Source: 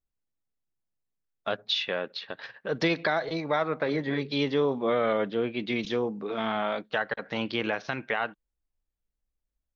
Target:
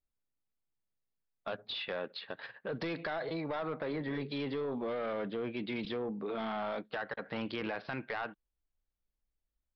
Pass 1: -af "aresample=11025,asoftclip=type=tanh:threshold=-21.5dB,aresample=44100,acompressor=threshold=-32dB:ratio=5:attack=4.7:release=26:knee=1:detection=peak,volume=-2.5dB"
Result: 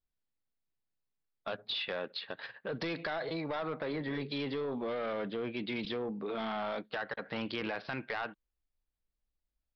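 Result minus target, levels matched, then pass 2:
4000 Hz band +2.5 dB
-af "aresample=11025,asoftclip=type=tanh:threshold=-21.5dB,aresample=44100,acompressor=threshold=-32dB:ratio=5:attack=4.7:release=26:knee=1:detection=peak,highshelf=f=3.3k:g=-6.5,volume=-2.5dB"

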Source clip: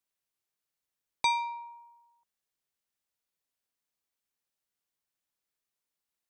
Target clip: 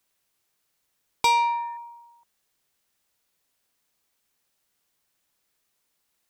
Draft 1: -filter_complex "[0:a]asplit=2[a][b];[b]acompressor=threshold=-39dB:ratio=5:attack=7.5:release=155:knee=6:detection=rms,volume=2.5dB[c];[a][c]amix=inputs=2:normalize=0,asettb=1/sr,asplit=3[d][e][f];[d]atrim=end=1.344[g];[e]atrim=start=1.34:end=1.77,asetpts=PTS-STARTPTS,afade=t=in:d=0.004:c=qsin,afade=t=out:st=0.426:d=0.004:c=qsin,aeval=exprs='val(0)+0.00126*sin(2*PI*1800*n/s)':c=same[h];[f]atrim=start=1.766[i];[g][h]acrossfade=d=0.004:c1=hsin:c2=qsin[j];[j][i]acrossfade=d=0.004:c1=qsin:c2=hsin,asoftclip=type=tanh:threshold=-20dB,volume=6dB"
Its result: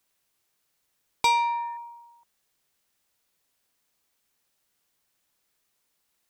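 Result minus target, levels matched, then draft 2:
compressor: peak gain reduction +8.5 dB
-filter_complex "[0:a]asplit=2[a][b];[b]acompressor=threshold=-28.5dB:ratio=5:attack=7.5:release=155:knee=6:detection=rms,volume=2.5dB[c];[a][c]amix=inputs=2:normalize=0,asettb=1/sr,asplit=3[d][e][f];[d]atrim=end=1.344[g];[e]atrim=start=1.34:end=1.77,asetpts=PTS-STARTPTS,afade=t=in:d=0.004:c=qsin,afade=t=out:st=0.426:d=0.004:c=qsin,aeval=exprs='val(0)+0.00126*sin(2*PI*1800*n/s)':c=same[h];[f]atrim=start=1.766[i];[g][h]acrossfade=d=0.004:c1=hsin:c2=qsin[j];[j][i]acrossfade=d=0.004:c1=qsin:c2=hsin,asoftclip=type=tanh:threshold=-20dB,volume=6dB"

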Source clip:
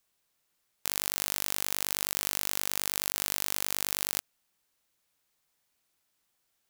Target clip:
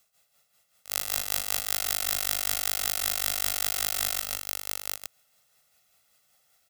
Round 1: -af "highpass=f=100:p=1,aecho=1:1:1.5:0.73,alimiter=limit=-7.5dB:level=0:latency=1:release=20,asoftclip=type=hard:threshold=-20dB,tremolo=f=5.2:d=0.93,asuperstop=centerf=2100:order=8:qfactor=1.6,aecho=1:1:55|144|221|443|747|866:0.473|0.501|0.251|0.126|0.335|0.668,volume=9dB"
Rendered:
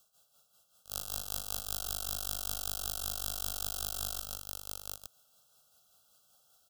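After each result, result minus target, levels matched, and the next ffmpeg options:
2000 Hz band -7.5 dB; hard clip: distortion +7 dB
-af "highpass=f=100:p=1,aecho=1:1:1.5:0.73,alimiter=limit=-7.5dB:level=0:latency=1:release=20,asoftclip=type=hard:threshold=-20dB,tremolo=f=5.2:d=0.93,aecho=1:1:55|144|221|443|747|866:0.473|0.501|0.251|0.126|0.335|0.668,volume=9dB"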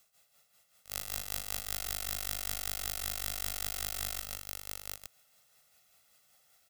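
hard clip: distortion +7 dB
-af "highpass=f=100:p=1,aecho=1:1:1.5:0.73,alimiter=limit=-7.5dB:level=0:latency=1:release=20,asoftclip=type=hard:threshold=-11dB,tremolo=f=5.2:d=0.93,aecho=1:1:55|144|221|443|747|866:0.473|0.501|0.251|0.126|0.335|0.668,volume=9dB"

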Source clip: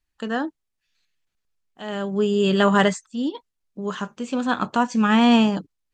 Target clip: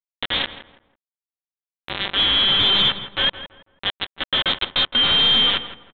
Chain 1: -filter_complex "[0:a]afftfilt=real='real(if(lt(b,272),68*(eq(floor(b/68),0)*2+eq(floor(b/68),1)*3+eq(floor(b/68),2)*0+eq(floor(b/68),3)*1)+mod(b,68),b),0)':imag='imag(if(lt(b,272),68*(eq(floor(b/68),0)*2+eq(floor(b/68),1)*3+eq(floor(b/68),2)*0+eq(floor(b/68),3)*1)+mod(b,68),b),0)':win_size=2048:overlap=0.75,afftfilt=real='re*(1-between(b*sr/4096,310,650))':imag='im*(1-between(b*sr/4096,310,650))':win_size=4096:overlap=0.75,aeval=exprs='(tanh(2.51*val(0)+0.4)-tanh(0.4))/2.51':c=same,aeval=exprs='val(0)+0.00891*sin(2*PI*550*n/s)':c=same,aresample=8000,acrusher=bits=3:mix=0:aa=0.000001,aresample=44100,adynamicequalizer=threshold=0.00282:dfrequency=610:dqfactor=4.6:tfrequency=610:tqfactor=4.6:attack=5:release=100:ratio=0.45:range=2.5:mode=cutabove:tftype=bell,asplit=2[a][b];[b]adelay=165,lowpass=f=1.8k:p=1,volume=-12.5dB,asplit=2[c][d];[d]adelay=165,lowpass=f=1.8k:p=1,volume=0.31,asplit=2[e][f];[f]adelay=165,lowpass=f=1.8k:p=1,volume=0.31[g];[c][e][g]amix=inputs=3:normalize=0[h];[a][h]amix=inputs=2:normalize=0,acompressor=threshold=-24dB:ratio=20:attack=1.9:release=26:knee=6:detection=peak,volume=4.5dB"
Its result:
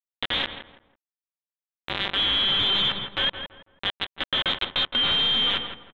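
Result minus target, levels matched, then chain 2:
compressor: peak gain reduction +7 dB
-filter_complex "[0:a]afftfilt=real='real(if(lt(b,272),68*(eq(floor(b/68),0)*2+eq(floor(b/68),1)*3+eq(floor(b/68),2)*0+eq(floor(b/68),3)*1)+mod(b,68),b),0)':imag='imag(if(lt(b,272),68*(eq(floor(b/68),0)*2+eq(floor(b/68),1)*3+eq(floor(b/68),2)*0+eq(floor(b/68),3)*1)+mod(b,68),b),0)':win_size=2048:overlap=0.75,afftfilt=real='re*(1-between(b*sr/4096,310,650))':imag='im*(1-between(b*sr/4096,310,650))':win_size=4096:overlap=0.75,aeval=exprs='(tanh(2.51*val(0)+0.4)-tanh(0.4))/2.51':c=same,aeval=exprs='val(0)+0.00891*sin(2*PI*550*n/s)':c=same,aresample=8000,acrusher=bits=3:mix=0:aa=0.000001,aresample=44100,adynamicequalizer=threshold=0.00282:dfrequency=610:dqfactor=4.6:tfrequency=610:tqfactor=4.6:attack=5:release=100:ratio=0.45:range=2.5:mode=cutabove:tftype=bell,asplit=2[a][b];[b]adelay=165,lowpass=f=1.8k:p=1,volume=-12.5dB,asplit=2[c][d];[d]adelay=165,lowpass=f=1.8k:p=1,volume=0.31,asplit=2[e][f];[f]adelay=165,lowpass=f=1.8k:p=1,volume=0.31[g];[c][e][g]amix=inputs=3:normalize=0[h];[a][h]amix=inputs=2:normalize=0,acompressor=threshold=-16.5dB:ratio=20:attack=1.9:release=26:knee=6:detection=peak,volume=4.5dB"

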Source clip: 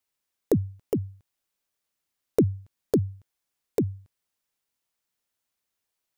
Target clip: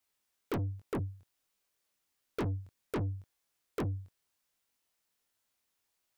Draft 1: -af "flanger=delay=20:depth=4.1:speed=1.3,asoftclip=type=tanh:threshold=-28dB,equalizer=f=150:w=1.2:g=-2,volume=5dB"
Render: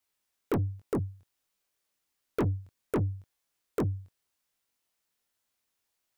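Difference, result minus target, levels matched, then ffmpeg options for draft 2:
soft clip: distortion -4 dB
-af "flanger=delay=20:depth=4.1:speed=1.3,asoftclip=type=tanh:threshold=-35dB,equalizer=f=150:w=1.2:g=-2,volume=5dB"

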